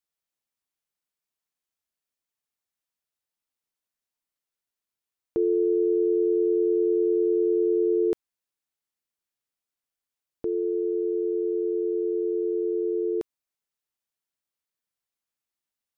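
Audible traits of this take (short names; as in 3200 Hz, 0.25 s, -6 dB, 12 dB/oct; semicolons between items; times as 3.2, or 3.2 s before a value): noise floor -90 dBFS; spectral tilt +1.0 dB/oct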